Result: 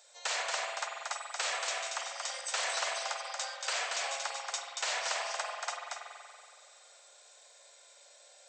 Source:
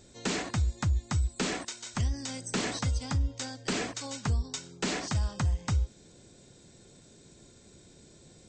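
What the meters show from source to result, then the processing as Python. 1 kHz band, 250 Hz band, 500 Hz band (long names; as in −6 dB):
+3.5 dB, below −35 dB, −2.0 dB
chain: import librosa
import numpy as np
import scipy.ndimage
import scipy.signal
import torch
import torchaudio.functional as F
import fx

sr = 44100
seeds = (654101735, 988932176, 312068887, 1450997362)

p1 = scipy.signal.sosfilt(scipy.signal.butter(8, 570.0, 'highpass', fs=sr, output='sos'), x)
p2 = p1 + fx.echo_single(p1, sr, ms=231, db=-3.5, dry=0)
y = fx.rev_spring(p2, sr, rt60_s=2.2, pass_ms=(46,), chirp_ms=35, drr_db=2.0)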